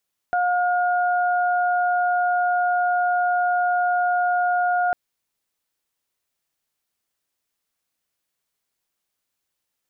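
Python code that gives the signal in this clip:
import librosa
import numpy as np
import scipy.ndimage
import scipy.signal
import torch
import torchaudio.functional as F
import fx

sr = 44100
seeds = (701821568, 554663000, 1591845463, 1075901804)

y = fx.additive_steady(sr, length_s=4.6, hz=715.0, level_db=-18.5, upper_db=(-6.0,))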